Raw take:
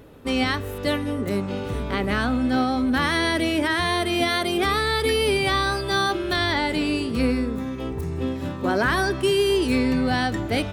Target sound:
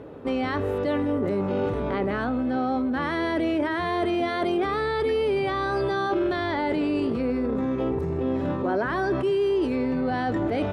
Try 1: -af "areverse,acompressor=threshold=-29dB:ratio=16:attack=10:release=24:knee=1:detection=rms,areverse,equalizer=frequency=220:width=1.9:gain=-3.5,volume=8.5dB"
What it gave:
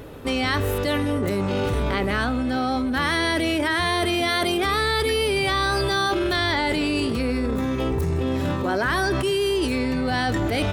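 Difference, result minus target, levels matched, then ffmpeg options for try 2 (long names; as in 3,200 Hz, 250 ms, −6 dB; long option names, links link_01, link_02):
500 Hz band −2.5 dB
-af "areverse,acompressor=threshold=-29dB:ratio=16:attack=10:release=24:knee=1:detection=rms,areverse,bandpass=frequency=410:width_type=q:width=0.52:csg=0,equalizer=frequency=220:width=1.9:gain=-3.5,volume=8.5dB"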